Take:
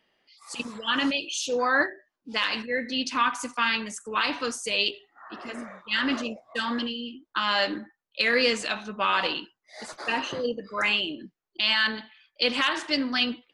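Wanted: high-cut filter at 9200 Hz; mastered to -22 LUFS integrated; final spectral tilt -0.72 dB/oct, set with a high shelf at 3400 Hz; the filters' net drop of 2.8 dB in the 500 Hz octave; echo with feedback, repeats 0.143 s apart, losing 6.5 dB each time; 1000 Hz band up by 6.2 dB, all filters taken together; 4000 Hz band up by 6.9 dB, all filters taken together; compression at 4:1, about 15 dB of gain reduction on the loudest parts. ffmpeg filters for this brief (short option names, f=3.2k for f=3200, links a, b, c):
-af "lowpass=9.2k,equalizer=f=500:t=o:g=-5,equalizer=f=1k:t=o:g=7.5,highshelf=f=3.4k:g=6,equalizer=f=4k:t=o:g=5,acompressor=threshold=-32dB:ratio=4,aecho=1:1:143|286|429|572|715|858:0.473|0.222|0.105|0.0491|0.0231|0.0109,volume=10.5dB"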